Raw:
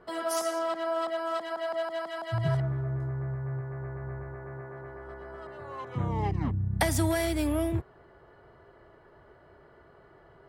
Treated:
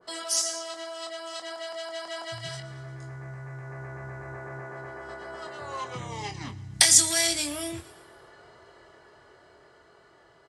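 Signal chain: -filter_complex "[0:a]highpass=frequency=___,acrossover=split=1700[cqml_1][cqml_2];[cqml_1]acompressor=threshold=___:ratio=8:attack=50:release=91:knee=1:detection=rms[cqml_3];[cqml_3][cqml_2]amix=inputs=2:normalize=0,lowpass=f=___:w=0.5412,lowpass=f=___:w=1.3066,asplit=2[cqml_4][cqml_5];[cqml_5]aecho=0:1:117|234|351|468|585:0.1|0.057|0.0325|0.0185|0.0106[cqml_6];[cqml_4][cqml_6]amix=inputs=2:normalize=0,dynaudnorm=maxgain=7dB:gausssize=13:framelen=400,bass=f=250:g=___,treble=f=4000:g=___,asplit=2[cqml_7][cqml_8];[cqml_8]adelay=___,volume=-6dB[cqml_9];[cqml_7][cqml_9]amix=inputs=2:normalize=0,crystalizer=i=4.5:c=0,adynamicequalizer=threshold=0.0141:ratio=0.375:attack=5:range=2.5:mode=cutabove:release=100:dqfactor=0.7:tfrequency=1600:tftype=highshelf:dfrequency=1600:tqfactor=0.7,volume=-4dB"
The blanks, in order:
47, -39dB, 7500, 7500, -5, 8, 24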